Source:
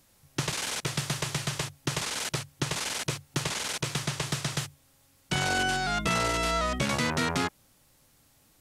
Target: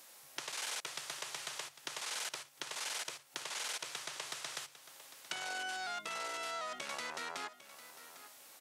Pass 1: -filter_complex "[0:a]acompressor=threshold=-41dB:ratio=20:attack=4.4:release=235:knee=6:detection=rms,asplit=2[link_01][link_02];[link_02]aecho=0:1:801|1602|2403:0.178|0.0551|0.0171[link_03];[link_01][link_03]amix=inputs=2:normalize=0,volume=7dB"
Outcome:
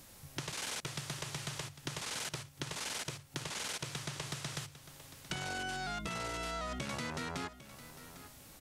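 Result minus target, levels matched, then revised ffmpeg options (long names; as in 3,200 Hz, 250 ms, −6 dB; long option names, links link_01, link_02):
500 Hz band +2.5 dB
-filter_complex "[0:a]acompressor=threshold=-41dB:ratio=20:attack=4.4:release=235:knee=6:detection=rms,highpass=570,asplit=2[link_01][link_02];[link_02]aecho=0:1:801|1602|2403:0.178|0.0551|0.0171[link_03];[link_01][link_03]amix=inputs=2:normalize=0,volume=7dB"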